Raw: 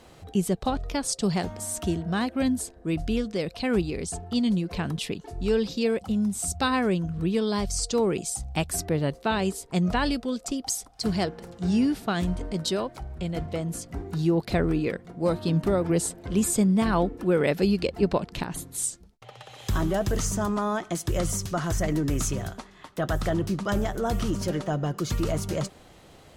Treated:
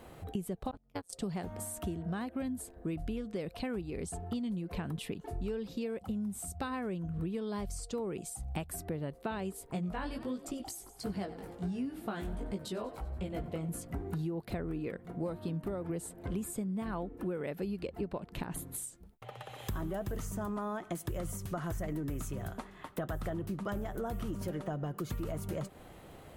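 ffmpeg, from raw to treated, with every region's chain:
-filter_complex "[0:a]asettb=1/sr,asplit=3[a][b][c];[a]atrim=end=0.714[d];[b]atrim=start=0.71:end=1.13,asetpts=PTS-STARTPTS,afade=t=in:d=0.004:c=qsin,afade=t=out:st=0.416:d=0.004:c=qsin,agate=range=-30dB:threshold=-26dB:ratio=16:release=100:detection=peak,tremolo=f=180:d=0.974,highshelf=f=8.2k:g=6.5[e];[c]atrim=start=1.126[f];[d][e]acrossfade=d=0.004:c1=hsin:c2=qsin[g];[g][f]acrossfade=d=0.004:c1=qsin:c2=hsin,asettb=1/sr,asplit=3[h][i][j];[h]atrim=end=9.734[k];[i]atrim=start=9.73:end=13.69,asetpts=PTS-STARTPTS,afade=t=in:d=0.004:c=qsin,afade=t=out:st=3.956:d=0.004:c=qsin,asplit=6[l][m][n][o][p][q];[m]adelay=94,afreqshift=35,volume=-18dB[r];[n]adelay=188,afreqshift=70,volume=-23.4dB[s];[o]adelay=282,afreqshift=105,volume=-28.7dB[t];[p]adelay=376,afreqshift=140,volume=-34.1dB[u];[q]adelay=470,afreqshift=175,volume=-39.4dB[v];[l][r][s][t][u][v]amix=inputs=6:normalize=0,atrim=end_sample=174636,flanger=delay=15:depth=4.7:speed=1.4[w];[j]atrim=start=13.686[x];[k][w]acrossfade=d=0.004:c1=hsin:c2=qsin[y];[y][x]acrossfade=d=0.004:c1=qsin:c2=hsin,highshelf=f=11k:g=7.5,acompressor=threshold=-33dB:ratio=12,equalizer=f=5.5k:t=o:w=1.5:g=-11.5"

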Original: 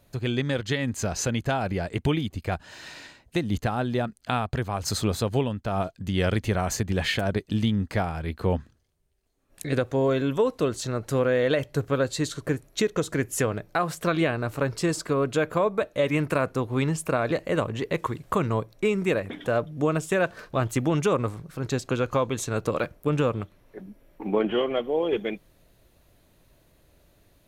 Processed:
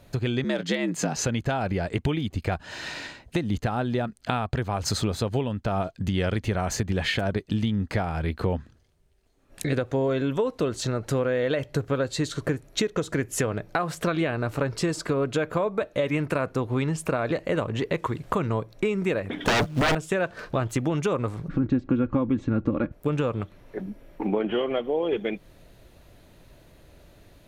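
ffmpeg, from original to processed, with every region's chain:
-filter_complex "[0:a]asettb=1/sr,asplit=3[a][b][c];[a]atrim=end=0.444[d];[b]atrim=start=0.44:end=1.17,asetpts=PTS-STARTPTS,afade=t=in:d=0.004:c=qsin,afade=t=out:st=0.726:d=0.004:c=qsin,afreqshift=70,asplit=2[e][f];[f]adelay=18,volume=-13dB[g];[e][g]amix=inputs=2:normalize=0,atrim=end_sample=32193,asoftclip=type=hard:threshold=-15.5dB[h];[c]atrim=start=1.166[i];[d][h]acrossfade=d=0.004:c1=hsin:c2=qsin[j];[j][i]acrossfade=d=0.004:c1=qsin:c2=hsin,asettb=1/sr,asplit=3[k][l][m];[k]atrim=end=19.454[n];[l]atrim=start=19.45:end=19.95,asetpts=PTS-STARTPTS,afade=t=in:d=0.004:c=qsin,afade=t=out:st=0.496:d=0.004:c=qsin,agate=range=-16dB:threshold=-36dB:ratio=16:release=100:detection=peak,aeval=exprs='0.224*sin(PI/2*5.62*val(0)/0.224)':c=same,acrusher=bits=4:mode=log:mix=0:aa=0.000001[o];[m]atrim=start=19.946[p];[n][o]acrossfade=d=0.004:c1=hsin:c2=qsin[q];[q][p]acrossfade=d=0.004:c1=qsin:c2=hsin,asettb=1/sr,asplit=3[r][s][t];[r]atrim=end=21.484[u];[s]atrim=start=21.48:end=22.92,asetpts=PTS-STARTPTS,afade=t=in:d=0.004:c=qsin,afade=t=out:st=1.436:d=0.004:c=qsin,lowpass=2k,lowshelf=f=390:t=q:w=1.5:g=9.5,aecho=1:1:3.6:0.5,atrim=end_sample=63504[v];[t]atrim=start=22.916[w];[u][v]acrossfade=d=0.004:c1=hsin:c2=qsin[x];[x][w]acrossfade=d=0.004:c1=qsin:c2=hsin,highshelf=f=8.3k:g=-9.5,bandreject=f=1.1k:w=27,acompressor=threshold=-33dB:ratio=3,volume=8dB"

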